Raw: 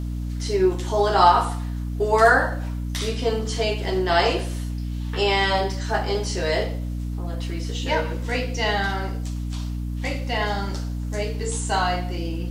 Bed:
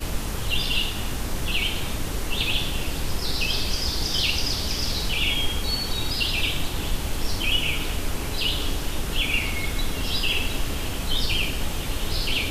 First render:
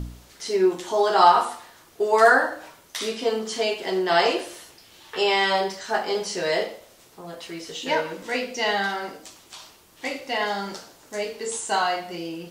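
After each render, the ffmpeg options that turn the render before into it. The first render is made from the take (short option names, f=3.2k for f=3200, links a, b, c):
-af "bandreject=f=60:t=h:w=4,bandreject=f=120:t=h:w=4,bandreject=f=180:t=h:w=4,bandreject=f=240:t=h:w=4,bandreject=f=300:t=h:w=4"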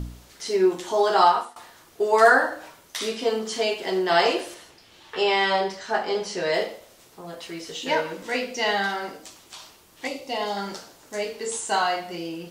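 -filter_complex "[0:a]asettb=1/sr,asplit=3[a][b][c];[a]atrim=end=4.544[d];[b]atrim=start=4.54:end=6.54,asetpts=PTS-STARTPTS,afade=t=in:d=0.004:c=qsin,afade=t=out:st=1.996:d=0.004:c=qsin,highshelf=f=7.9k:g=-11.5[e];[c]atrim=start=6.536[f];[d][e]acrossfade=d=0.004:c1=hsin:c2=qsin[g];[g][f]acrossfade=d=0.004:c1=qsin:c2=hsin,asettb=1/sr,asplit=3[h][i][j];[h]atrim=end=10.074[k];[i]atrim=start=10.07:end=10.57,asetpts=PTS-STARTPTS,afade=t=in:d=0.004:c=qsin,afade=t=out:st=0.496:d=0.004:c=qsin,equalizer=f=1.7k:w=1.8:g=-12[l];[j]atrim=start=10.566[m];[k][l]acrossfade=d=0.004:c1=hsin:c2=qsin[n];[n][m]acrossfade=d=0.004:c1=qsin:c2=hsin,asplit=2[o][p];[o]atrim=end=1.56,asetpts=PTS-STARTPTS,afade=t=out:st=1.16:d=0.4:silence=0.1[q];[p]atrim=start=1.56,asetpts=PTS-STARTPTS,afade=t=in:d=0.004:c=hsin:silence=0.1[r];[q][r]concat=n=2:v=0:a=1"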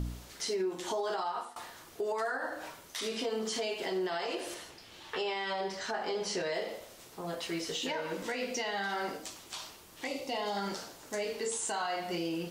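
-af "acompressor=threshold=-28dB:ratio=6,alimiter=level_in=1.5dB:limit=-24dB:level=0:latency=1:release=77,volume=-1.5dB"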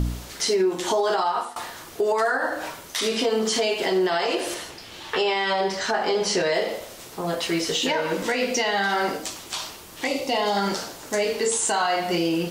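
-af "volume=11.5dB"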